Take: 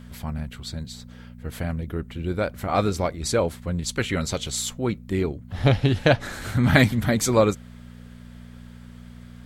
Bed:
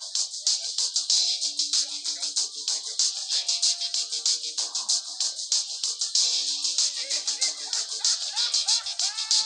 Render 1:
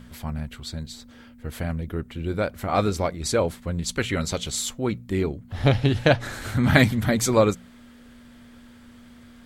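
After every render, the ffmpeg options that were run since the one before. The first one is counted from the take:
-af "bandreject=f=60:t=h:w=4,bandreject=f=120:t=h:w=4,bandreject=f=180:t=h:w=4"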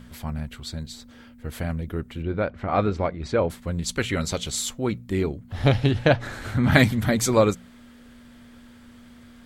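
-filter_complex "[0:a]asettb=1/sr,asplit=3[s0][s1][s2];[s0]atrim=end=2.224[s3];[s1]atrim=start=2.22:end=3.5,asetpts=PTS-STARTPTS,afade=t=in:d=0.004:c=qsin,afade=t=out:st=1.276:d=0.004:c=qsin,lowpass=2600[s4];[s2]atrim=start=3.496[s5];[s3][s4]acrossfade=d=0.004:c1=hsin:c2=qsin[s6];[s6][s5]acrossfade=d=0.004:c1=qsin:c2=hsin,asettb=1/sr,asplit=3[s7][s8][s9];[s7]atrim=end=5.914[s10];[s8]atrim=start=5.91:end=6.72,asetpts=PTS-STARTPTS,afade=t=in:d=0.004:c=qsin,afade=t=out:st=0.806:d=0.004:c=qsin,highshelf=f=4700:g=-8.5[s11];[s9]atrim=start=6.716[s12];[s10][s11]acrossfade=d=0.004:c1=hsin:c2=qsin[s13];[s13][s12]acrossfade=d=0.004:c1=qsin:c2=hsin"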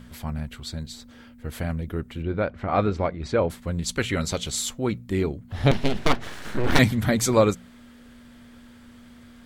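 -filter_complex "[0:a]asettb=1/sr,asplit=3[s0][s1][s2];[s0]atrim=end=5.714[s3];[s1]atrim=start=5.71:end=6.79,asetpts=PTS-STARTPTS,afade=t=in:d=0.004:c=qsin,afade=t=out:st=1.076:d=0.004:c=qsin,aeval=exprs='abs(val(0))':c=same[s4];[s2]atrim=start=6.786[s5];[s3][s4]acrossfade=d=0.004:c1=hsin:c2=qsin[s6];[s6][s5]acrossfade=d=0.004:c1=qsin:c2=hsin"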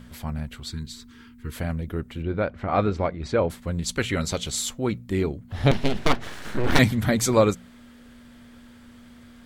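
-filter_complex "[0:a]asettb=1/sr,asplit=3[s0][s1][s2];[s0]atrim=end=0.704[s3];[s1]atrim=start=0.7:end=1.56,asetpts=PTS-STARTPTS,afade=t=in:d=0.004:c=qsin,afade=t=out:st=0.856:d=0.004:c=qsin,asuperstop=centerf=640:order=12:qfactor=1.4[s4];[s2]atrim=start=1.556[s5];[s3][s4]acrossfade=d=0.004:c1=hsin:c2=qsin[s6];[s6][s5]acrossfade=d=0.004:c1=qsin:c2=hsin"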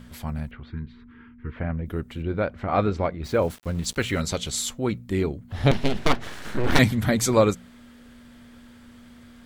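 -filter_complex "[0:a]asettb=1/sr,asplit=3[s0][s1][s2];[s0]atrim=end=0.514[s3];[s1]atrim=start=0.51:end=1.86,asetpts=PTS-STARTPTS,afade=t=in:d=0.004:c=qsin,afade=t=out:st=1.346:d=0.004:c=qsin,lowpass=f=2300:w=0.5412,lowpass=f=2300:w=1.3066[s4];[s2]atrim=start=1.856[s5];[s3][s4]acrossfade=d=0.004:c1=hsin:c2=qsin[s6];[s6][s5]acrossfade=d=0.004:c1=qsin:c2=hsin,asplit=3[s7][s8][s9];[s7]afade=t=out:st=3.23:d=0.02[s10];[s8]aeval=exprs='val(0)*gte(abs(val(0)),0.00891)':c=same,afade=t=in:st=3.23:d=0.02,afade=t=out:st=4.2:d=0.02[s11];[s9]afade=t=in:st=4.2:d=0.02[s12];[s10][s11][s12]amix=inputs=3:normalize=0"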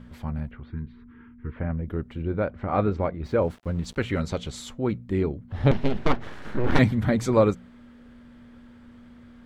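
-af "lowpass=f=1400:p=1,bandreject=f=690:w=21"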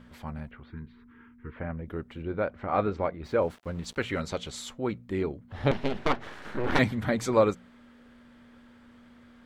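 -af "lowshelf=f=280:g=-10"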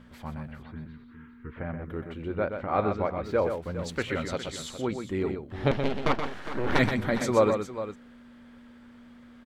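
-af "aecho=1:1:125|409:0.447|0.237"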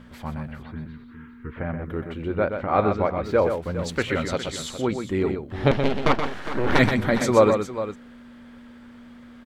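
-af "volume=1.88,alimiter=limit=0.708:level=0:latency=1"

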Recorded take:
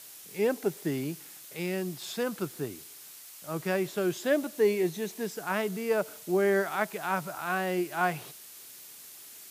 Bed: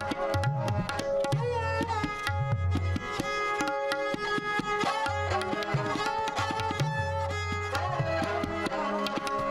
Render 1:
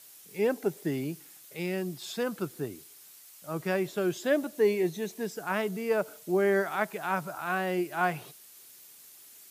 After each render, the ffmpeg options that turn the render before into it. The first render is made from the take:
-af "afftdn=nr=6:nf=-49"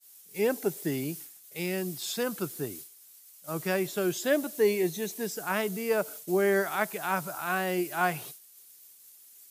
-af "agate=range=0.0224:threshold=0.00631:ratio=3:detection=peak,highshelf=f=4600:g=10"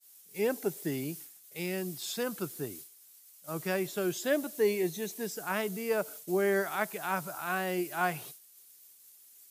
-af "volume=0.708"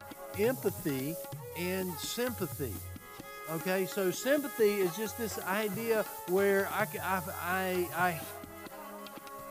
-filter_complex "[1:a]volume=0.168[s0];[0:a][s0]amix=inputs=2:normalize=0"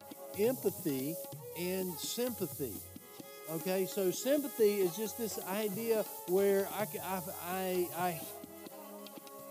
-af "highpass=170,equalizer=f=1500:t=o:w=1.2:g=-13.5"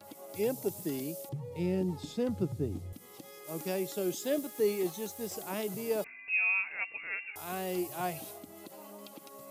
-filter_complex "[0:a]asettb=1/sr,asplit=3[s0][s1][s2];[s0]atrim=end=1.294[s3];[s1]atrim=start=1.29:end=2.93,asetpts=PTS-STARTPTS,afade=t=in:d=0.004:c=qsin,afade=t=out:st=1.636:d=0.004:c=qsin,aemphasis=mode=reproduction:type=riaa[s4];[s2]atrim=start=2.926[s5];[s3][s4]acrossfade=d=0.004:c1=hsin:c2=qsin[s6];[s6][s5]acrossfade=d=0.004:c1=qsin:c2=hsin,asettb=1/sr,asplit=3[s7][s8][s9];[s7]atrim=end=4.174[s10];[s8]atrim=start=4.17:end=5.32,asetpts=PTS-STARTPTS,afade=t=in:d=0.004:c=qsin,afade=t=out:st=1.146:d=0.004:c=qsin,aeval=exprs='sgn(val(0))*max(abs(val(0))-0.00158,0)':c=same[s11];[s9]atrim=start=5.316[s12];[s10][s11]acrossfade=d=0.004:c1=hsin:c2=qsin[s13];[s13][s12]acrossfade=d=0.004:c1=qsin:c2=hsin,asettb=1/sr,asplit=3[s14][s15][s16];[s14]atrim=end=6.044[s17];[s15]atrim=start=6.04:end=7.36,asetpts=PTS-STARTPTS,afade=t=in:d=0.004:c=qsin,afade=t=out:st=1.316:d=0.004:c=qsin,lowpass=f=2500:t=q:w=0.5098,lowpass=f=2500:t=q:w=0.6013,lowpass=f=2500:t=q:w=0.9,lowpass=f=2500:t=q:w=2.563,afreqshift=-2900[s18];[s16]atrim=start=7.356[s19];[s17][s18]acrossfade=d=0.004:c1=hsin:c2=qsin[s20];[s20][s19]acrossfade=d=0.004:c1=qsin:c2=hsin"

